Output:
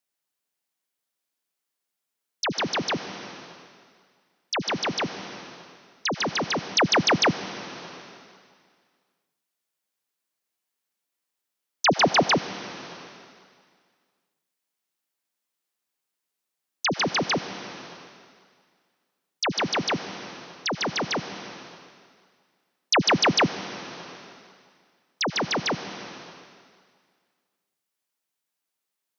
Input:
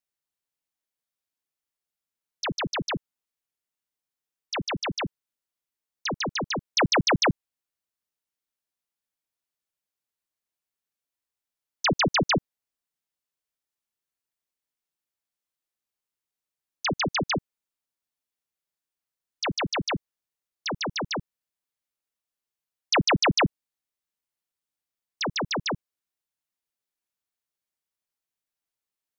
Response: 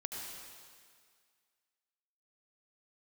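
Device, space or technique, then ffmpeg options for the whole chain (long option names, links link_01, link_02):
ducked reverb: -filter_complex "[0:a]asplit=3[link_01][link_02][link_03];[1:a]atrim=start_sample=2205[link_04];[link_02][link_04]afir=irnorm=-1:irlink=0[link_05];[link_03]apad=whole_len=1287140[link_06];[link_05][link_06]sidechaincompress=threshold=-35dB:ratio=3:attack=43:release=704,volume=1dB[link_07];[link_01][link_07]amix=inputs=2:normalize=0,highpass=150,asettb=1/sr,asplit=3[link_08][link_09][link_10];[link_08]atrim=end=11.864[link_11];[link_09]atrim=start=11.86:end=12.34,asetpts=PTS-STARTPTS,afade=type=in:duration=0.004:curve=qsin,afade=type=out:start_time=0.476:duration=0.004:curve=qsin,equalizer=frequency=720:width_type=o:width=0.75:gain=7.5[link_12];[link_10]atrim=start=12.336[link_13];[link_11][link_12]acrossfade=duration=0.004:curve1=hsin:curve2=qsin[link_14];[link_14][link_13]acrossfade=duration=0.004:curve1=qsin:curve2=hsin"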